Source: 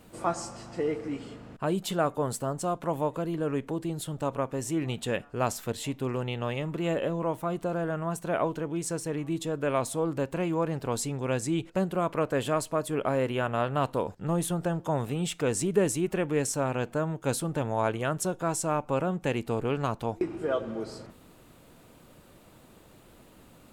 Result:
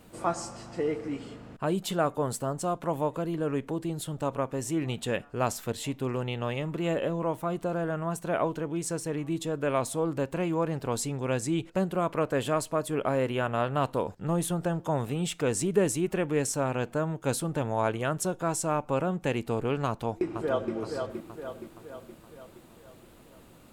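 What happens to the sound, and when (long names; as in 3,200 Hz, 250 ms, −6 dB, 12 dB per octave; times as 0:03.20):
0:19.88–0:20.73: delay throw 470 ms, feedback 55%, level −5.5 dB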